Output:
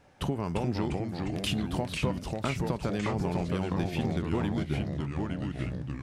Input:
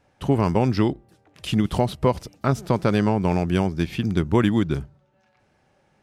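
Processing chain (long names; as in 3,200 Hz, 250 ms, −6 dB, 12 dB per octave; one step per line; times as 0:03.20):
downward compressor 6 to 1, threshold −32 dBFS, peak gain reduction 17 dB
on a send at −17.5 dB: convolution reverb, pre-delay 3 ms
on the sum: delay with pitch and tempo change per echo 320 ms, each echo −2 semitones, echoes 3
level +3 dB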